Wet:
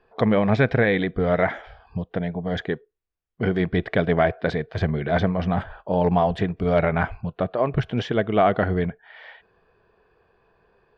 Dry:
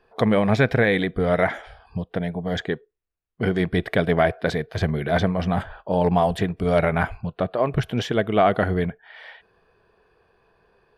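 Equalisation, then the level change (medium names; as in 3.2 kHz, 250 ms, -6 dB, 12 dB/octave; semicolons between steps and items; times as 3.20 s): distance through air 140 m; 0.0 dB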